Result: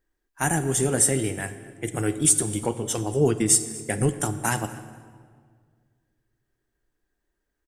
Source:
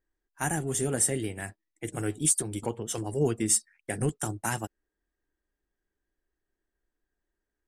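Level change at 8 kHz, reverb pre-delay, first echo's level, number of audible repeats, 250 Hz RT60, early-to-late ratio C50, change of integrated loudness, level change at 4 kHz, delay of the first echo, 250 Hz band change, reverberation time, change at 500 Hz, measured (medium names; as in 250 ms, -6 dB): +5.5 dB, 22 ms, -22.0 dB, 1, 2.3 s, 12.5 dB, +5.5 dB, +6.0 dB, 239 ms, +6.0 dB, 1.9 s, +6.0 dB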